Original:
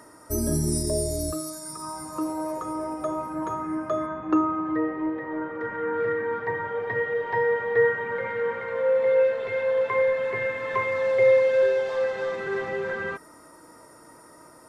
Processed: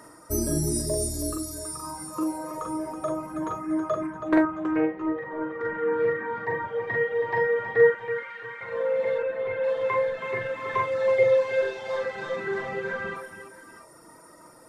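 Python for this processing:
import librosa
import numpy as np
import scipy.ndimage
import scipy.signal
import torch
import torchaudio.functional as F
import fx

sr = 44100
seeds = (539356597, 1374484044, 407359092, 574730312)

p1 = fx.lowpass(x, sr, hz=2400.0, slope=12, at=(9.18, 9.64))
p2 = fx.dereverb_blind(p1, sr, rt60_s=1.4)
p3 = fx.highpass(p2, sr, hz=1500.0, slope=12, at=(7.9, 8.61))
p4 = p3 + fx.echo_multitap(p3, sr, ms=(41, 47, 324, 668, 684), db=(-4.0, -5.5, -9.0, -17.0, -17.5), dry=0)
y = fx.doppler_dist(p4, sr, depth_ms=0.32, at=(4.02, 5.0))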